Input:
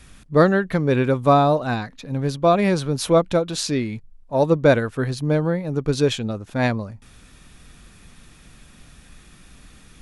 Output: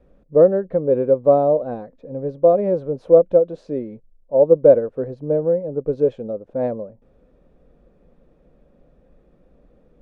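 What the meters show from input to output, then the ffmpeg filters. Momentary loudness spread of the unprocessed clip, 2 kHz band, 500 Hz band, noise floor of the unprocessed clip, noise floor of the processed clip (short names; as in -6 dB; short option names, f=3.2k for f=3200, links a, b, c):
10 LU, under -20 dB, +5.0 dB, -49 dBFS, -57 dBFS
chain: -af "crystalizer=i=6.5:c=0,lowpass=f=530:t=q:w=5.4,equalizer=f=96:w=2.5:g=-12,volume=-7dB"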